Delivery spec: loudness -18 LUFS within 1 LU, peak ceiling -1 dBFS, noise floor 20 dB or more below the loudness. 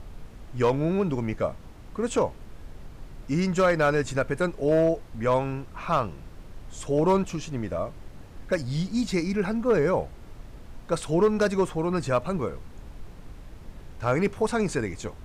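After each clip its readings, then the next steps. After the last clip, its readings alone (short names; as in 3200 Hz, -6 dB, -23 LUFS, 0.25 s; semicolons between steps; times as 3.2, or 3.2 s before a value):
clipped 0.4%; flat tops at -14.5 dBFS; noise floor -45 dBFS; noise floor target -46 dBFS; loudness -26.0 LUFS; peak -14.5 dBFS; loudness target -18.0 LUFS
-> clip repair -14.5 dBFS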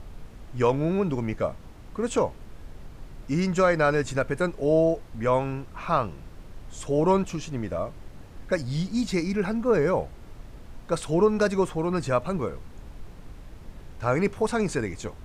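clipped 0.0%; noise floor -45 dBFS; noise floor target -46 dBFS
-> noise print and reduce 6 dB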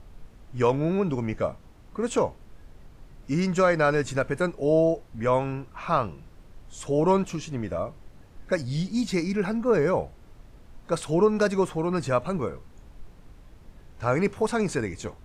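noise floor -51 dBFS; loudness -26.0 LUFS; peak -10.0 dBFS; loudness target -18.0 LUFS
-> gain +8 dB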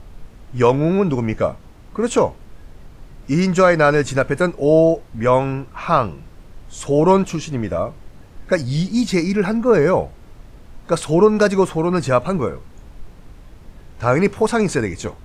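loudness -18.0 LUFS; peak -2.0 dBFS; noise floor -43 dBFS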